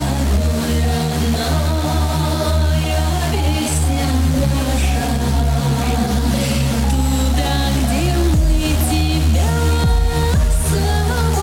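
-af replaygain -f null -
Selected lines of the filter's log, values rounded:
track_gain = +2.8 dB
track_peak = 0.292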